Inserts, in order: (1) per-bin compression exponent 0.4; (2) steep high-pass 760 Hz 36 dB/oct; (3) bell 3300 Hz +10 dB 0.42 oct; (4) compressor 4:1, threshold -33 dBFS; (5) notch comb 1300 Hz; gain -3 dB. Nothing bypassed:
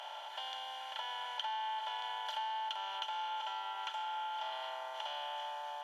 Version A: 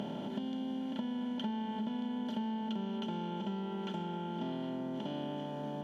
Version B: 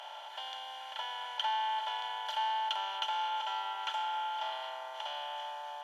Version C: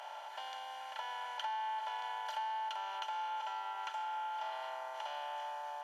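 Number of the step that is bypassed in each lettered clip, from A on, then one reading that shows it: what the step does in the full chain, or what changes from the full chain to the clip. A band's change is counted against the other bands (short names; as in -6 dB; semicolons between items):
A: 2, 500 Hz band +15.5 dB; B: 4, mean gain reduction 2.5 dB; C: 3, 4 kHz band -6.5 dB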